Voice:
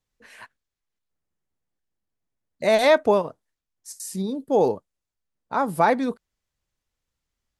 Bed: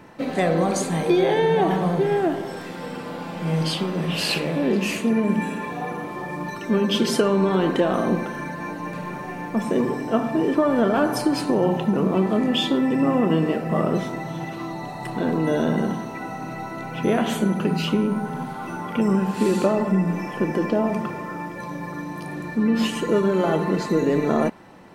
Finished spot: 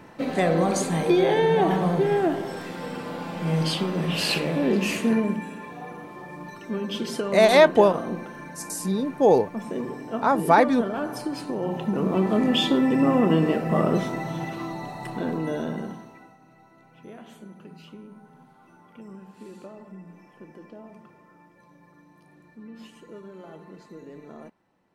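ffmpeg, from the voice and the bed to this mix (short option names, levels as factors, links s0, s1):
-filter_complex "[0:a]adelay=4700,volume=1.26[s0];[1:a]volume=2.51,afade=t=out:st=5.16:d=0.25:silence=0.398107,afade=t=in:st=11.59:d=0.89:silence=0.354813,afade=t=out:st=14.3:d=2.07:silence=0.0707946[s1];[s0][s1]amix=inputs=2:normalize=0"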